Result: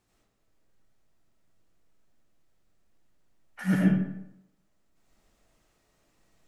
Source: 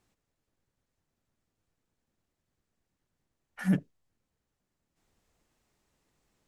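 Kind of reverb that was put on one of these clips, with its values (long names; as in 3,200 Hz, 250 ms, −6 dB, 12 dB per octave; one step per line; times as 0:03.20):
comb and all-pass reverb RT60 0.8 s, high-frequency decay 0.65×, pre-delay 50 ms, DRR −5.5 dB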